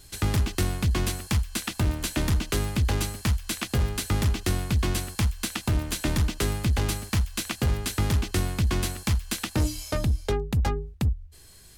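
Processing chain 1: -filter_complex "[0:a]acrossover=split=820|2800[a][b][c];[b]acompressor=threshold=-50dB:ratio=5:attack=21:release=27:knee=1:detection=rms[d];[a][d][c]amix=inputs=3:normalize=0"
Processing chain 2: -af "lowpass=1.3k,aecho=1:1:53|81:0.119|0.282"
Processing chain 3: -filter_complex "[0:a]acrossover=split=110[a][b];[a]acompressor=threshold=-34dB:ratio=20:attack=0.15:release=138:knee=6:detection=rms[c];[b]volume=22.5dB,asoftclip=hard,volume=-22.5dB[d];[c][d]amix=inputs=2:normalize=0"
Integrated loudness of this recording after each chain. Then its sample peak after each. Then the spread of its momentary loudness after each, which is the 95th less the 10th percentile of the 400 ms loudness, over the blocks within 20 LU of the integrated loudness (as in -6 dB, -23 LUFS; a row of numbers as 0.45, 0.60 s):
-27.5, -28.0, -30.5 LUFS; -13.5, -15.5, -20.5 dBFS; 3, 3, 3 LU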